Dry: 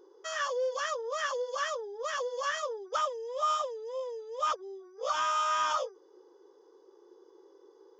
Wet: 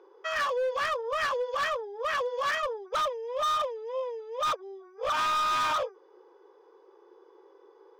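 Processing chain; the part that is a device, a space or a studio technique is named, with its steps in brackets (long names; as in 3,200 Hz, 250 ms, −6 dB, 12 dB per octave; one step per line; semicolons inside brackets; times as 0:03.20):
megaphone (band-pass filter 540–2,600 Hz; parametric band 2,400 Hz +10.5 dB 0.25 octaves; hard clipping −32 dBFS, distortion −9 dB)
level +7 dB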